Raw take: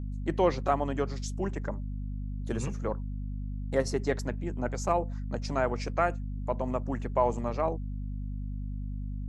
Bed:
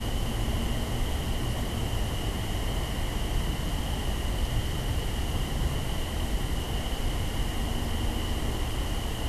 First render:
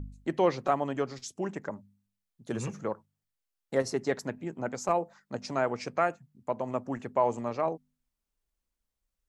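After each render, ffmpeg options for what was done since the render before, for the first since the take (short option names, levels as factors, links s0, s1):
-af "bandreject=f=50:t=h:w=4,bandreject=f=100:t=h:w=4,bandreject=f=150:t=h:w=4,bandreject=f=200:t=h:w=4,bandreject=f=250:t=h:w=4"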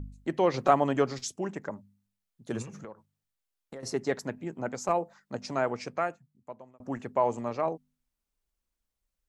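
-filter_complex "[0:a]asettb=1/sr,asplit=3[s0][s1][s2];[s0]atrim=end=0.544[s3];[s1]atrim=start=0.54:end=1.36,asetpts=PTS-STARTPTS,afade=t=in:d=0.004:c=qsin,afade=t=out:st=0.816:d=0.004:c=qsin,acontrast=33[s4];[s2]atrim=start=1.356[s5];[s3][s4]acrossfade=d=0.004:c1=hsin:c2=qsin[s6];[s6][s5]acrossfade=d=0.004:c1=qsin:c2=hsin,asettb=1/sr,asplit=3[s7][s8][s9];[s7]atrim=end=2.624[s10];[s8]atrim=start=2.62:end=3.83,asetpts=PTS-STARTPTS,afade=t=in:d=0.004:c=qsin,afade=t=out:st=1.206:d=0.004:c=qsin,acompressor=threshold=0.0112:ratio=8:attack=3.2:release=140:knee=1:detection=peak[s11];[s9]atrim=start=3.826[s12];[s10][s11]acrossfade=d=0.004:c1=hsin:c2=qsin[s13];[s13][s12]acrossfade=d=0.004:c1=qsin:c2=hsin,asplit=2[s14][s15];[s14]atrim=end=6.8,asetpts=PTS-STARTPTS,afade=t=out:st=5.7:d=1.1[s16];[s15]atrim=start=6.8,asetpts=PTS-STARTPTS,afade=t=in:d=0.004:c=hsin[s17];[s16][s17]concat=n=2:v=0:a=1"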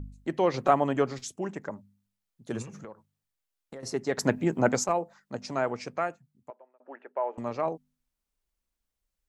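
-filter_complex "[0:a]asettb=1/sr,asplit=3[s0][s1][s2];[s0]atrim=end=0.594[s3];[s1]atrim=start=0.59:end=1.42,asetpts=PTS-STARTPTS,afade=t=in:d=0.004:c=qsin,afade=t=out:st=0.826:d=0.004:c=qsin,equalizer=f=5100:t=o:w=0.77:g=-5[s4];[s2]atrim=start=1.416[s5];[s3][s4]acrossfade=d=0.004:c1=hsin:c2=qsin[s6];[s6][s5]acrossfade=d=0.004:c1=qsin:c2=hsin,asettb=1/sr,asplit=3[s7][s8][s9];[s7]atrim=end=6.504[s10];[s8]atrim=start=6.5:end=7.38,asetpts=PTS-STARTPTS,afade=t=in:d=0.004:c=qsin,afade=t=out:st=0.876:d=0.004:c=qsin,highpass=f=440:w=0.5412,highpass=f=440:w=1.3066,equalizer=f=480:t=q:w=4:g=-5,equalizer=f=730:t=q:w=4:g=-5,equalizer=f=1100:t=q:w=4:g=-9,equalizer=f=2100:t=q:w=4:g=-6,lowpass=f=2200:w=0.5412,lowpass=f=2200:w=1.3066[s11];[s9]atrim=start=7.376[s12];[s10][s11]acrossfade=d=0.004:c1=hsin:c2=qsin[s13];[s13][s12]acrossfade=d=0.004:c1=qsin:c2=hsin,asplit=3[s14][s15][s16];[s14]atrim=end=4.182[s17];[s15]atrim=start=4.178:end=4.842,asetpts=PTS-STARTPTS,volume=3.35[s18];[s16]atrim=start=4.838[s19];[s17][s18]acrossfade=d=0.004:c1=hsin:c2=hsin[s20];[s20][s19]acrossfade=d=0.004:c1=hsin:c2=hsin"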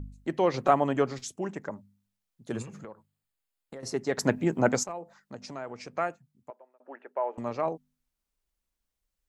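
-filter_complex "[0:a]asettb=1/sr,asplit=3[s0][s1][s2];[s0]atrim=end=2.514[s3];[s1]atrim=start=2.51:end=3.77,asetpts=PTS-STARTPTS,afade=t=in:d=0.004:c=qsin,afade=t=out:st=1.256:d=0.004:c=qsin,bandreject=f=5800:w=5.4[s4];[s2]atrim=start=3.766[s5];[s3][s4]acrossfade=d=0.004:c1=hsin:c2=qsin[s6];[s6][s5]acrossfade=d=0.004:c1=qsin:c2=hsin,asettb=1/sr,asplit=3[s7][s8][s9];[s7]atrim=end=4.834[s10];[s8]atrim=start=4.83:end=5.95,asetpts=PTS-STARTPTS,afade=t=in:d=0.004:c=qsin,afade=t=out:st=1.116:d=0.004:c=qsin,acompressor=threshold=0.00891:ratio=2:attack=3.2:release=140:knee=1:detection=peak[s11];[s9]atrim=start=5.946[s12];[s10][s11]acrossfade=d=0.004:c1=hsin:c2=qsin[s13];[s13][s12]acrossfade=d=0.004:c1=qsin:c2=hsin"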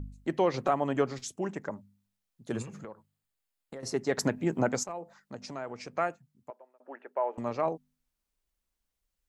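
-af "alimiter=limit=0.188:level=0:latency=1:release=371"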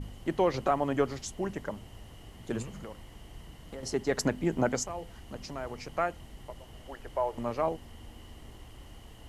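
-filter_complex "[1:a]volume=0.112[s0];[0:a][s0]amix=inputs=2:normalize=0"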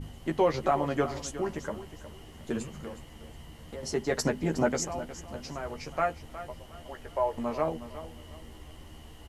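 -filter_complex "[0:a]asplit=2[s0][s1];[s1]adelay=13,volume=0.562[s2];[s0][s2]amix=inputs=2:normalize=0,aecho=1:1:363|726|1089:0.211|0.0655|0.0203"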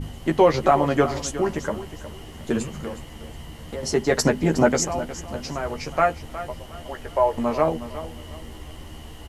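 -af "volume=2.66"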